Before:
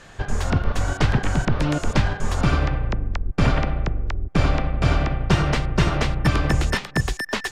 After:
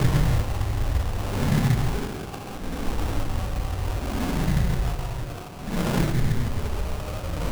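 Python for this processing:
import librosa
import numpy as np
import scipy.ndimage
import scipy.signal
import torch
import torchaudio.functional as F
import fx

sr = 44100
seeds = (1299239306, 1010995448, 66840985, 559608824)

y = scipy.ndimage.median_filter(x, 15, mode='constant')
y = fx.paulstretch(y, sr, seeds[0], factor=13.0, window_s=0.05, from_s=1.03)
y = fx.sample_hold(y, sr, seeds[1], rate_hz=1900.0, jitter_pct=20)
y = F.gain(torch.from_numpy(y), -4.5).numpy()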